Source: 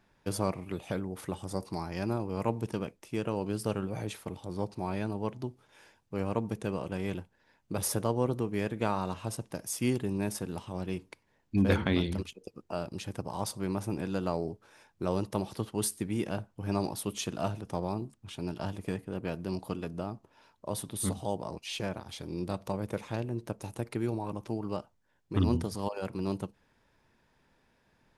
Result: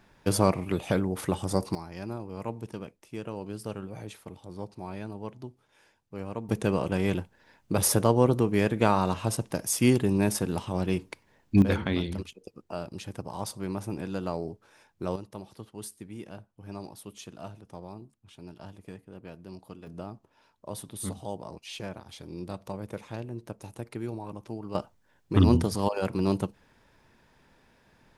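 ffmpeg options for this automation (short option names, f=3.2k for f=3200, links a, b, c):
-af "asetnsamples=n=441:p=0,asendcmd='1.75 volume volume -4.5dB;6.49 volume volume 7.5dB;11.62 volume volume -0.5dB;15.16 volume volume -9.5dB;19.87 volume volume -3dB;24.75 volume volume 7dB',volume=8dB"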